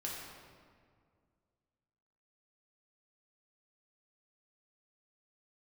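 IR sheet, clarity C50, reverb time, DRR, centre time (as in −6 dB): 0.0 dB, 2.0 s, −4.5 dB, 94 ms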